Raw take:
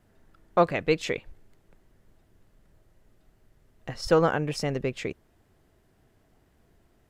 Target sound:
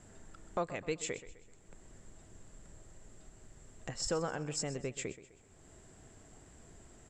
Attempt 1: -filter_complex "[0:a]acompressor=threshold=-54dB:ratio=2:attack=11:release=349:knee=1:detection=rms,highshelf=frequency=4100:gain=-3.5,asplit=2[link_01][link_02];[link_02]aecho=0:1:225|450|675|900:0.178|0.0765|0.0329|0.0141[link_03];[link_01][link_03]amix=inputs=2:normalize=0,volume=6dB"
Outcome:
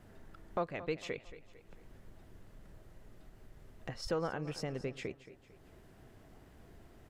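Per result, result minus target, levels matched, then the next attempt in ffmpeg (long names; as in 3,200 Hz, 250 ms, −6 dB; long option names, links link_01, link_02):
echo 97 ms late; 8,000 Hz band −13.0 dB
-filter_complex "[0:a]acompressor=threshold=-54dB:ratio=2:attack=11:release=349:knee=1:detection=rms,highshelf=frequency=4100:gain=-3.5,asplit=2[link_01][link_02];[link_02]aecho=0:1:128|256|384|512:0.178|0.0765|0.0329|0.0141[link_03];[link_01][link_03]amix=inputs=2:normalize=0,volume=6dB"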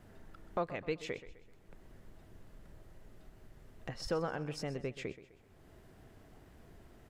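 8,000 Hz band −13.0 dB
-filter_complex "[0:a]acompressor=threshold=-54dB:ratio=2:attack=11:release=349:knee=1:detection=rms,lowpass=frequency=7500:width_type=q:width=16,highshelf=frequency=4100:gain=-3.5,asplit=2[link_01][link_02];[link_02]aecho=0:1:128|256|384|512:0.178|0.0765|0.0329|0.0141[link_03];[link_01][link_03]amix=inputs=2:normalize=0,volume=6dB"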